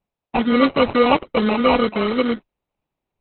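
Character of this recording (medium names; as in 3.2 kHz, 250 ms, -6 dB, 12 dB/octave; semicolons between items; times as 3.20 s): aliases and images of a low sample rate 1.7 kHz, jitter 0%; Opus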